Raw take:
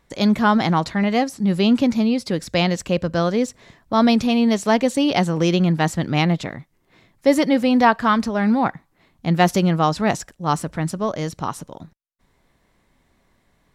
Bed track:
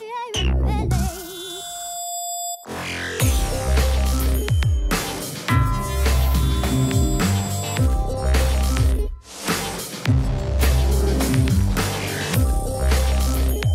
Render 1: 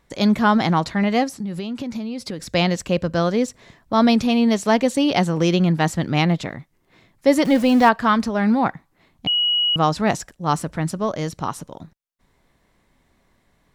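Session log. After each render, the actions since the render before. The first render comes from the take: 1.33–2.40 s: compression 12:1, threshold -24 dBFS; 7.45–7.89 s: jump at every zero crossing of -27 dBFS; 9.27–9.76 s: bleep 2.91 kHz -16 dBFS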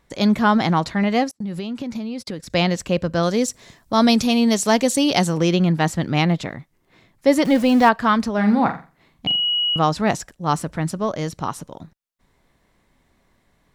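1.31–2.50 s: gate -36 dBFS, range -33 dB; 3.23–5.38 s: tone controls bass 0 dB, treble +10 dB; 8.33–9.79 s: flutter echo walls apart 7.5 m, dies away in 0.33 s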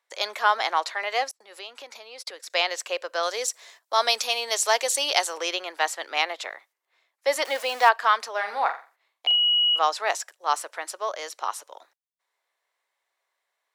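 gate -48 dBFS, range -11 dB; Bessel high-pass 810 Hz, order 8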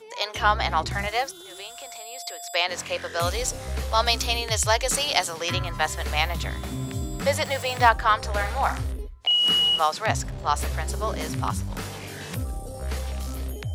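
add bed track -11.5 dB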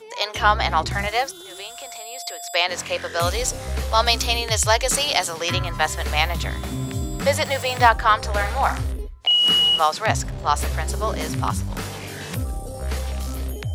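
trim +3.5 dB; peak limiter -2 dBFS, peak gain reduction 3 dB

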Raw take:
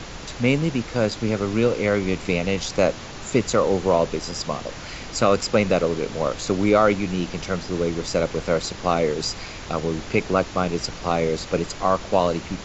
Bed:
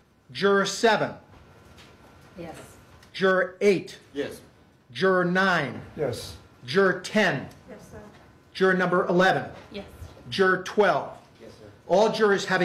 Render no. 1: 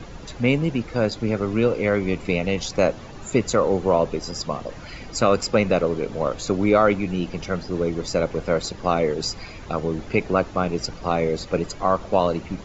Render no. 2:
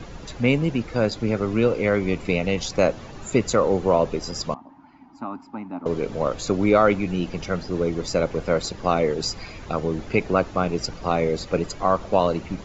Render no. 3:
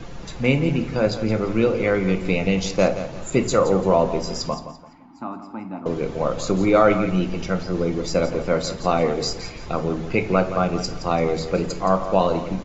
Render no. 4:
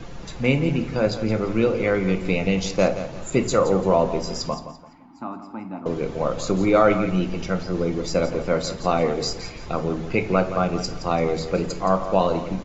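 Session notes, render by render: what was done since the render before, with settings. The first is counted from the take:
noise reduction 11 dB, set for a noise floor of -36 dBFS
4.54–5.86 s: two resonant band-passes 490 Hz, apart 1.7 oct
feedback delay 170 ms, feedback 30%, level -12 dB; simulated room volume 350 m³, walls furnished, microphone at 0.8 m
trim -1 dB

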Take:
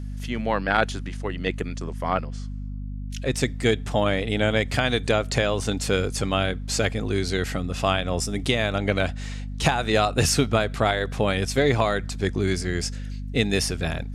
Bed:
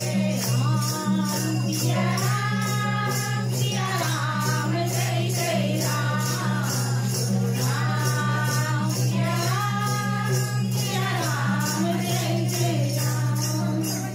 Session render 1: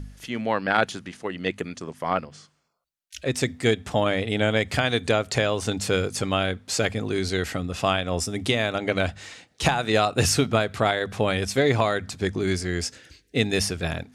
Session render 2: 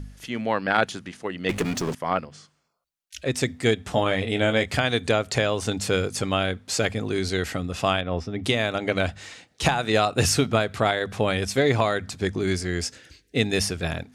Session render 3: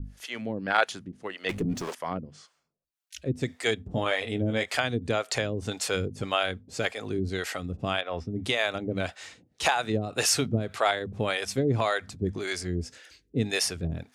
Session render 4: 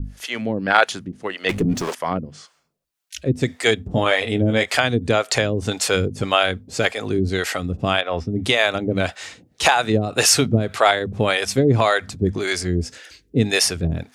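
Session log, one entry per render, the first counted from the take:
de-hum 50 Hz, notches 5
1.49–1.95 s: power-law waveshaper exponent 0.5; 3.83–4.66 s: doubling 22 ms -8 dB; 8.01–8.44 s: distance through air 270 m
harmonic tremolo 1.8 Hz, depth 100%, crossover 440 Hz
trim +9 dB; peak limiter -1 dBFS, peak gain reduction 1.5 dB

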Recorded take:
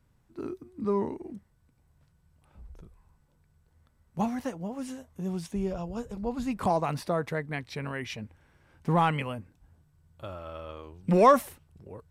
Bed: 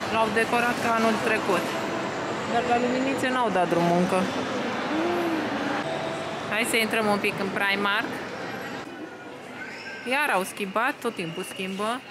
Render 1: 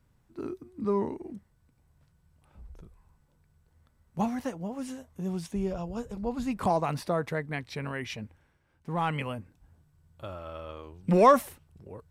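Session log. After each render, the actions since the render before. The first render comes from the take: 8.24–9.26 s: dip -9.5 dB, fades 0.36 s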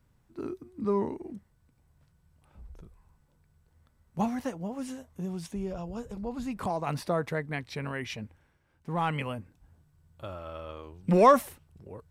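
5.25–6.87 s: compression 1.5:1, threshold -36 dBFS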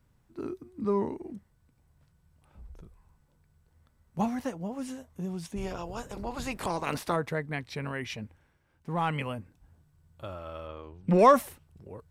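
5.56–7.15 s: spectral peaks clipped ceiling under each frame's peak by 17 dB; 10.67–11.19 s: treble shelf 5.7 kHz -12 dB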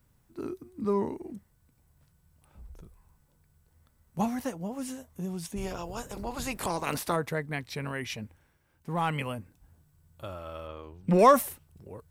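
treble shelf 8.2 kHz +12 dB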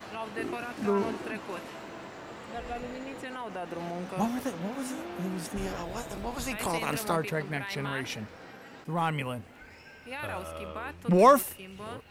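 add bed -14.5 dB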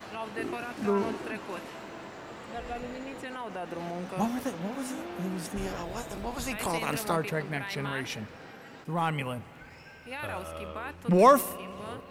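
spring tank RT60 3.5 s, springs 49 ms, chirp 50 ms, DRR 19 dB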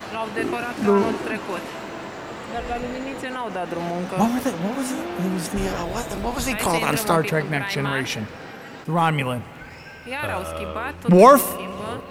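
trim +9.5 dB; peak limiter -2 dBFS, peak gain reduction 2.5 dB

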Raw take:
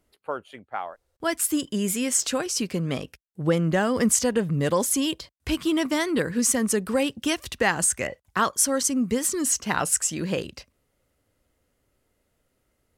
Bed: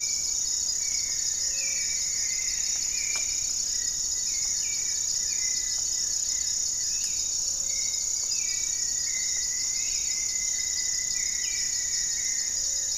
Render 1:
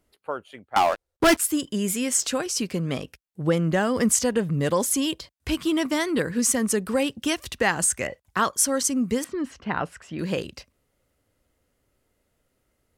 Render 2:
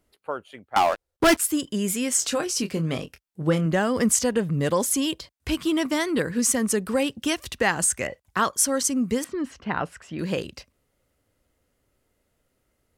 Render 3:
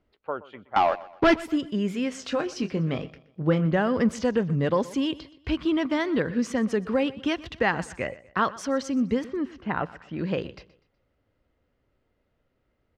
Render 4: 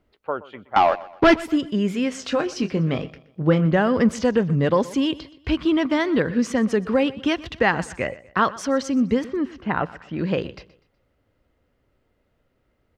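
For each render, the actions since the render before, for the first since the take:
0.76–1.37 s: waveshaping leveller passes 5; 9.24–10.19 s: distance through air 390 m
2.18–3.66 s: doubling 25 ms -9 dB
distance through air 240 m; feedback delay 123 ms, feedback 39%, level -19 dB
trim +4.5 dB

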